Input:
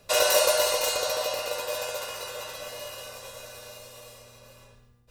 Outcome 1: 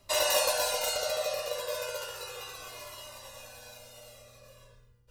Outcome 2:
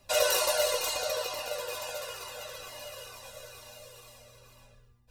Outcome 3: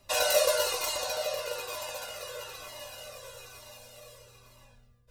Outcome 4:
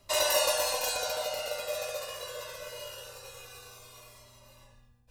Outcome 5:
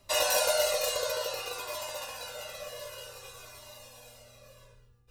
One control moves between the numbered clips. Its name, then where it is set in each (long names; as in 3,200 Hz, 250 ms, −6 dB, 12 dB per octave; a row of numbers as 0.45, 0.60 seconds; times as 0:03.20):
flanger whose copies keep moving one way, speed: 0.33, 2.2, 1.1, 0.23, 0.55 Hertz